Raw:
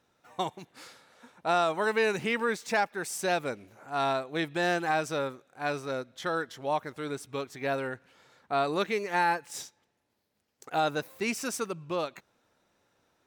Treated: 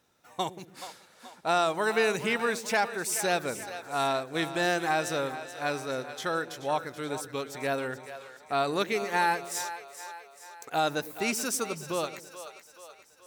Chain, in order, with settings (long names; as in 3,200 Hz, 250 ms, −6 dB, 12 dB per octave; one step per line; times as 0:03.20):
high-shelf EQ 5,300 Hz +8.5 dB
on a send: echo with a time of its own for lows and highs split 460 Hz, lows 105 ms, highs 429 ms, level −12 dB